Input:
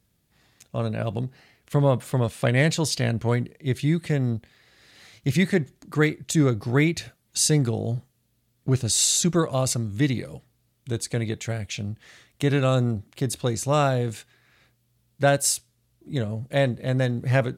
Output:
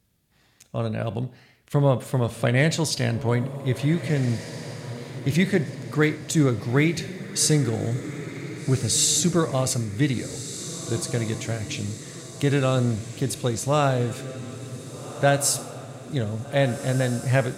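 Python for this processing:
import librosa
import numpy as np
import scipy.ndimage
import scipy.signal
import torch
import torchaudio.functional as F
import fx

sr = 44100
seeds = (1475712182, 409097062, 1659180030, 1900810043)

y = fx.echo_diffused(x, sr, ms=1615, feedback_pct=51, wet_db=-12)
y = fx.rev_schroeder(y, sr, rt60_s=0.6, comb_ms=29, drr_db=15.0)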